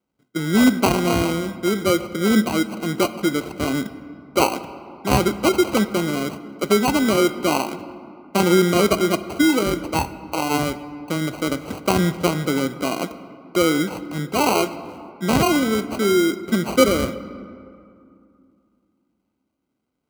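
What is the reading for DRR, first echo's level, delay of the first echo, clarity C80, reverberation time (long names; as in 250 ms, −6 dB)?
11.0 dB, no echo audible, no echo audible, 14.5 dB, 2.5 s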